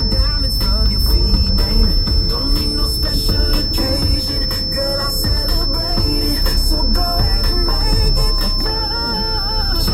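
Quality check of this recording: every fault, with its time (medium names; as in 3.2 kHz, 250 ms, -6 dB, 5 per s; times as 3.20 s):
whine 5.3 kHz -19 dBFS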